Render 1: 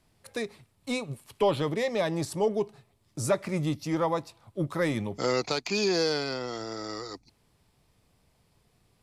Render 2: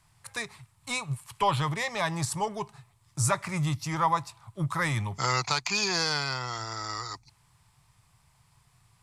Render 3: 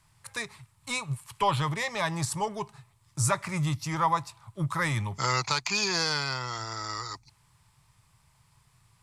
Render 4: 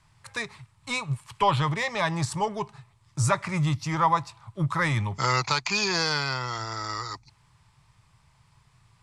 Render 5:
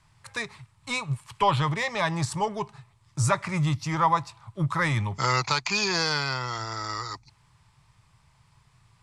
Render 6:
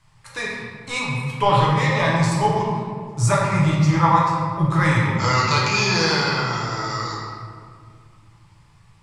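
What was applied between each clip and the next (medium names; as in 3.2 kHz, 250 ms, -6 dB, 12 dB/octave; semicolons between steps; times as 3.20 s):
graphic EQ 125/250/500/1000/2000/8000 Hz +10/-11/-11/+10/+3/+8 dB
band-stop 730 Hz, Q 12
distance through air 61 m; trim +3.5 dB
no audible change
reverberation RT60 2.0 s, pre-delay 6 ms, DRR -5.5 dB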